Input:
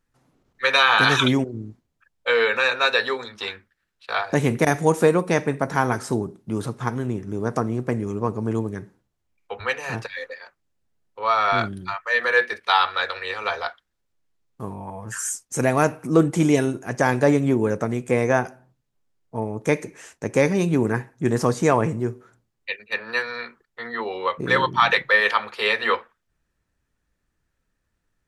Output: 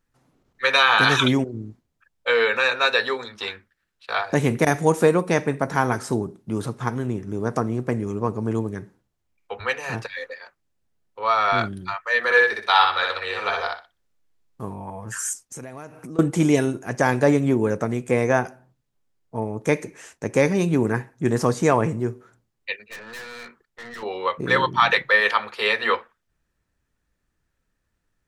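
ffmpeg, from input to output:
ffmpeg -i in.wav -filter_complex "[0:a]asettb=1/sr,asplit=3[link_01][link_02][link_03];[link_01]atrim=end=12.244[link_04];[link_02]atrim=start=12.24:end=14.65,asetpts=PTS-STARTPTS,afade=type=in:duration=0.004:curve=qsin,afade=type=out:start_time=2.406:duration=0.004:curve=qsin,aecho=1:1:62|124|186:0.708|0.163|0.0375,atrim=end_sample=106281[link_05];[link_03]atrim=start=14.646[link_06];[link_04][link_05]acrossfade=duration=0.004:curve1=hsin:curve2=qsin[link_07];[link_07][link_06]acrossfade=duration=0.004:curve1=qsin:curve2=hsin,asettb=1/sr,asplit=3[link_08][link_09][link_10];[link_08]atrim=end=15.334[link_11];[link_09]atrim=start=15.33:end=16.19,asetpts=PTS-STARTPTS,afade=type=in:duration=0.004:curve=qsin,afade=type=out:start_time=0.856:duration=0.004:curve=qsin,acompressor=threshold=-34dB:ratio=6:attack=3.2:release=140:knee=1:detection=peak[link_12];[link_10]atrim=start=16.186[link_13];[link_11][link_12]acrossfade=duration=0.004:curve1=hsin:curve2=qsin[link_14];[link_14][link_13]acrossfade=duration=0.004:curve1=qsin:curve2=hsin,asettb=1/sr,asplit=3[link_15][link_16][link_17];[link_15]atrim=end=22.874[link_18];[link_16]atrim=start=22.87:end=24.03,asetpts=PTS-STARTPTS,afade=type=in:duration=0.004:curve=qsin,afade=type=out:start_time=1.156:duration=0.004:curve=qsin,aeval=exprs='(tanh(56.2*val(0)+0.25)-tanh(0.25))/56.2':channel_layout=same[link_19];[link_17]atrim=start=24.026[link_20];[link_18][link_19]acrossfade=duration=0.004:curve1=hsin:curve2=qsin[link_21];[link_21][link_20]acrossfade=duration=0.004:curve1=qsin:curve2=hsin" out.wav

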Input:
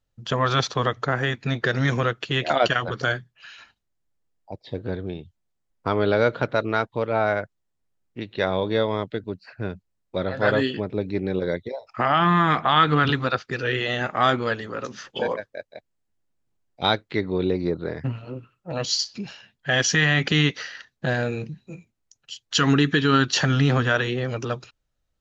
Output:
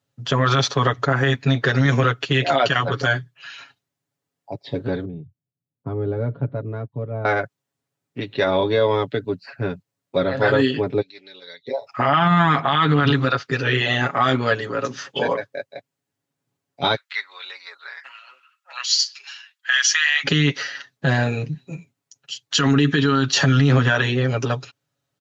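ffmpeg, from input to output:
ffmpeg -i in.wav -filter_complex "[0:a]asettb=1/sr,asplit=3[link_01][link_02][link_03];[link_01]atrim=end=5.054[link_04];[link_02]atrim=start=5.05:end=7.25,asetpts=PTS-STARTPTS,afade=type=in:duration=0.004:curve=qsin,afade=type=out:start_time=2.196:duration=0.004:curve=qsin,bandpass=frequency=110:width_type=q:width=0.99[link_05];[link_03]atrim=start=7.246[link_06];[link_04][link_05]acrossfade=duration=0.004:curve1=hsin:curve2=qsin[link_07];[link_07][link_06]acrossfade=duration=0.004:curve1=qsin:curve2=hsin,asplit=3[link_08][link_09][link_10];[link_08]afade=type=out:start_time=11:duration=0.02[link_11];[link_09]bandpass=frequency=4200:width_type=q:width=2.4,afade=type=in:start_time=11:duration=0.02,afade=type=out:start_time=11.67:duration=0.02[link_12];[link_10]afade=type=in:start_time=11.67:duration=0.02[link_13];[link_11][link_12][link_13]amix=inputs=3:normalize=0,asplit=3[link_14][link_15][link_16];[link_14]afade=type=out:start_time=16.94:duration=0.02[link_17];[link_15]highpass=frequency=1200:width=0.5412,highpass=frequency=1200:width=1.3066,afade=type=in:start_time=16.94:duration=0.02,afade=type=out:start_time=20.23:duration=0.02[link_18];[link_16]afade=type=in:start_time=20.23:duration=0.02[link_19];[link_17][link_18][link_19]amix=inputs=3:normalize=0,highpass=frequency=97:width=0.5412,highpass=frequency=97:width=1.3066,aecho=1:1:7.2:0.72,alimiter=limit=-12dB:level=0:latency=1:release=38,volume=4dB" out.wav

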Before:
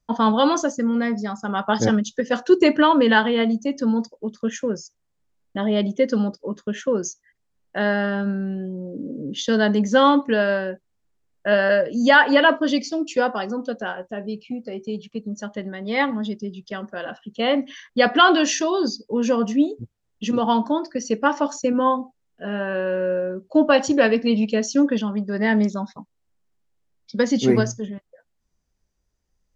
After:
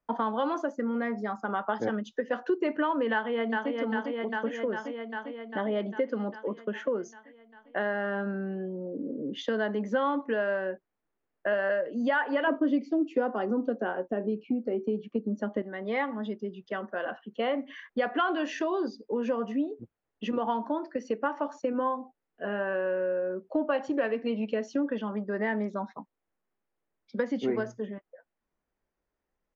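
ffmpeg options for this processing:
ffmpeg -i in.wav -filter_complex "[0:a]asplit=2[link_01][link_02];[link_02]afade=type=in:start_time=3.12:duration=0.01,afade=type=out:start_time=3.73:duration=0.01,aecho=0:1:400|800|1200|1600|2000|2400|2800|3200|3600|4000|4400:0.473151|0.331206|0.231844|0.162291|0.113604|0.0795225|0.0556658|0.038966|0.0272762|0.0190934|0.0133654[link_03];[link_01][link_03]amix=inputs=2:normalize=0,asettb=1/sr,asplit=3[link_04][link_05][link_06];[link_04]atrim=end=12.474[link_07];[link_05]atrim=start=12.47:end=15.62,asetpts=PTS-STARTPTS,afade=type=in:duration=0.004:curve=qsin,afade=type=out:start_time=3.146:duration=0.004:curve=qsin,equalizer=frequency=270:width_type=o:width=1.9:gain=13[link_08];[link_06]atrim=start=15.616[link_09];[link_07][link_08]acrossfade=duration=0.004:curve1=hsin:curve2=qsin[link_10];[link_10][link_09]acrossfade=duration=0.004:curve1=qsin:curve2=hsin,acrossover=split=250 2600:gain=0.178 1 0.0794[link_11][link_12][link_13];[link_11][link_12][link_13]amix=inputs=3:normalize=0,acompressor=threshold=-28dB:ratio=3" out.wav

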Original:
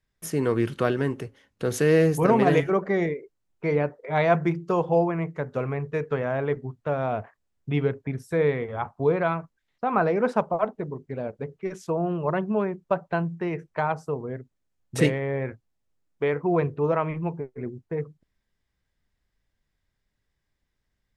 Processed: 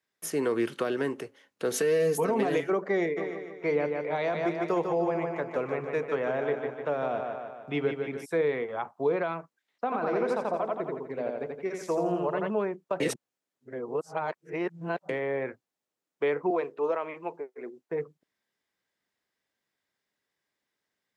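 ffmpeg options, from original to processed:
ffmpeg -i in.wav -filter_complex "[0:a]asettb=1/sr,asplit=3[link_01][link_02][link_03];[link_01]atrim=end=1.724[link_04];[link_02]atrim=start=1.72:end=2.43,asetpts=PTS-STARTPTS,afade=type=in:duration=0.004:curve=qsin,afade=type=out:start_time=0.706:duration=0.004:curve=qsin,aecho=1:1:4.5:0.65,atrim=end_sample=31311[link_05];[link_03]atrim=start=2.426[link_06];[link_04][link_05]acrossfade=duration=0.004:curve1=hsin:curve2=qsin[link_07];[link_07][link_06]acrossfade=duration=0.004:curve1=qsin:curve2=hsin,asplit=3[link_08][link_09][link_10];[link_08]afade=type=out:start_time=3.16:duration=0.02[link_11];[link_09]aecho=1:1:150|300|450|600|750|900:0.473|0.246|0.128|0.0665|0.0346|0.018,afade=type=in:start_time=3.16:duration=0.02,afade=type=out:start_time=8.24:duration=0.02[link_12];[link_10]afade=type=in:start_time=8.24:duration=0.02[link_13];[link_11][link_12][link_13]amix=inputs=3:normalize=0,asplit=3[link_14][link_15][link_16];[link_14]afade=type=out:start_time=9.9:duration=0.02[link_17];[link_15]aecho=1:1:84|168|252|336|420|504:0.708|0.319|0.143|0.0645|0.029|0.0131,afade=type=in:start_time=9.9:duration=0.02,afade=type=out:start_time=12.49:duration=0.02[link_18];[link_16]afade=type=in:start_time=12.49:duration=0.02[link_19];[link_17][link_18][link_19]amix=inputs=3:normalize=0,asettb=1/sr,asplit=3[link_20][link_21][link_22];[link_20]atrim=end=16.504[link_23];[link_21]atrim=start=16.5:end=17.89,asetpts=PTS-STARTPTS,afade=type=in:duration=0.004:curve=qsin,afade=type=out:start_time=1.386:duration=0.004:curve=qsin,highpass=370[link_24];[link_22]atrim=start=17.886[link_25];[link_23][link_24]acrossfade=duration=0.004:curve1=hsin:curve2=qsin[link_26];[link_26][link_25]acrossfade=duration=0.004:curve1=qsin:curve2=hsin,asplit=3[link_27][link_28][link_29];[link_27]atrim=end=13.002[link_30];[link_28]atrim=start=12.998:end=15.092,asetpts=PTS-STARTPTS,areverse[link_31];[link_29]atrim=start=15.088[link_32];[link_30][link_31]acrossfade=duration=0.004:curve1=hsin:curve2=hsin[link_33];[link_33][link_32]acrossfade=duration=0.004:curve1=hsin:curve2=hsin,highpass=310,alimiter=limit=-16dB:level=0:latency=1:release=55,acrossover=split=480|3000[link_34][link_35][link_36];[link_35]acompressor=threshold=-30dB:ratio=6[link_37];[link_34][link_37][link_36]amix=inputs=3:normalize=0" out.wav

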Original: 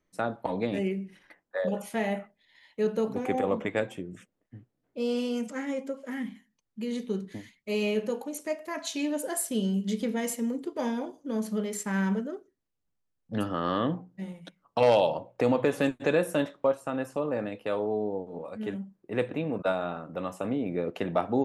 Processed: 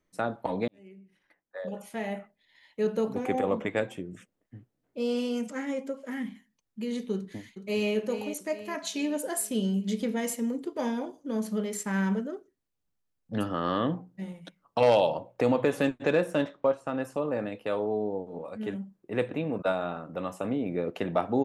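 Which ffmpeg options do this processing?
ffmpeg -i in.wav -filter_complex "[0:a]asplit=2[link_01][link_02];[link_02]afade=type=in:start_time=7.14:duration=0.01,afade=type=out:start_time=7.91:duration=0.01,aecho=0:1:420|840|1260|1680|2100:0.316228|0.158114|0.0790569|0.0395285|0.0197642[link_03];[link_01][link_03]amix=inputs=2:normalize=0,asettb=1/sr,asplit=3[link_04][link_05][link_06];[link_04]atrim=end=15.834[link_07];[link_05]atrim=start=15.83:end=17.01,asetpts=PTS-STARTPTS,afade=type=in:duration=0.004:curve=qsin,afade=type=out:start_time=1.176:duration=0.004:curve=qsin,adynamicsmooth=sensitivity=8:basefreq=6300[link_08];[link_06]atrim=start=17.006[link_09];[link_07][link_08]acrossfade=duration=0.004:curve1=hsin:curve2=qsin[link_10];[link_10][link_09]acrossfade=duration=0.004:curve1=qsin:curve2=hsin,asplit=2[link_11][link_12];[link_11]atrim=end=0.68,asetpts=PTS-STARTPTS,afade=type=out:start_time=0.676:duration=0.004:curve=hsin[link_13];[link_12]atrim=start=0.68,asetpts=PTS-STARTPTS,afade=type=in:duration=2.26[link_14];[link_13][link_14]concat=n=2:v=0:a=1" out.wav

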